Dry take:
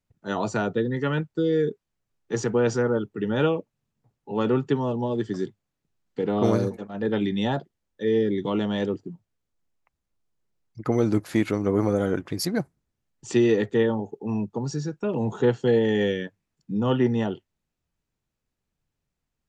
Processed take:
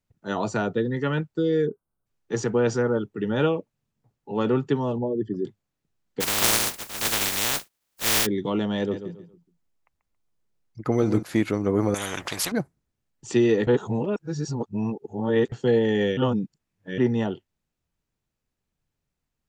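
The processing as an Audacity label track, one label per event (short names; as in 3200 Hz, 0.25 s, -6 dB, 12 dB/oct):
1.670000	2.060000	spectral delete 1600–8100 Hz
4.980000	5.450000	formant sharpening exponent 2
6.200000	8.250000	spectral contrast lowered exponent 0.1
8.770000	11.230000	feedback echo 0.138 s, feedback 30%, level -10.5 dB
11.940000	12.520000	spectral compressor 4:1
13.670000	15.520000	reverse
16.170000	16.980000	reverse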